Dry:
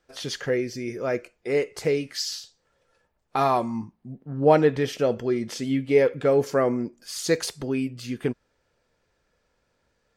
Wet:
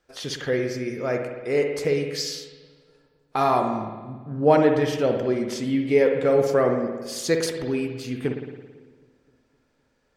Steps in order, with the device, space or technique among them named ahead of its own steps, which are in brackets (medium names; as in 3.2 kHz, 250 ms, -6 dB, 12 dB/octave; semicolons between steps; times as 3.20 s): dub delay into a spring reverb (filtered feedback delay 257 ms, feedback 61%, low-pass 840 Hz, level -22 dB; spring tank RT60 1.3 s, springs 55 ms, chirp 65 ms, DRR 4 dB)